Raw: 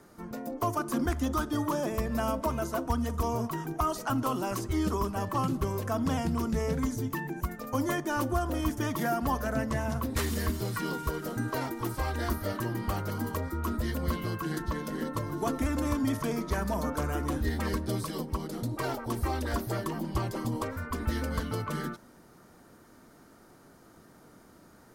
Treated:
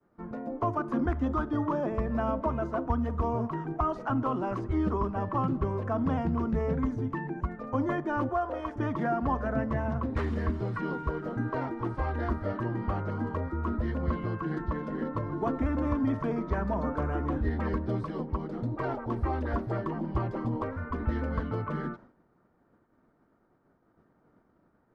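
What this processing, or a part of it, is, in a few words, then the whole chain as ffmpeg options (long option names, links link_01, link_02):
hearing-loss simulation: -filter_complex "[0:a]lowpass=1600,agate=range=-33dB:threshold=-47dB:ratio=3:detection=peak,asettb=1/sr,asplit=3[link_01][link_02][link_03];[link_01]atrim=end=8.294[link_04];[link_02]atrim=start=8.29:end=8.76,asetpts=PTS-STARTPTS,afade=type=in:duration=0.004:curve=qsin,afade=type=out:start_time=0.466:duration=0.004:curve=qsin,lowshelf=frequency=340:width_type=q:width=1.5:gain=-13.5[link_05];[link_03]atrim=start=8.756[link_06];[link_04][link_05]acrossfade=duration=0.004:curve1=hsin:curve2=qsin[link_07];[link_07][link_06]acrossfade=duration=0.004:curve1=qsin:curve2=hsin,volume=1dB"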